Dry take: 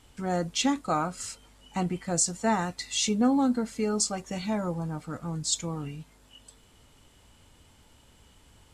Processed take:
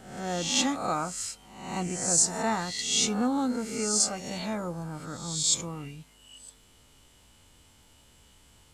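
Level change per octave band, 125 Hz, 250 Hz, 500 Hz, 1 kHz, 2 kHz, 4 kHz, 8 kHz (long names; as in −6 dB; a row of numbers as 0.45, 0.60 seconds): −3.5, −3.5, −2.0, −1.5, +1.0, +3.5, +4.5 decibels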